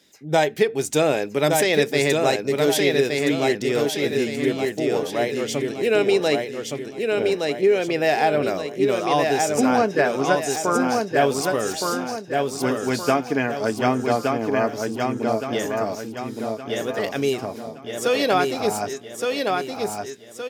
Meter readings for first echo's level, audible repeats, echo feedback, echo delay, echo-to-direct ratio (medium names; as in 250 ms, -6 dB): -3.5 dB, 5, 43%, 1168 ms, -2.5 dB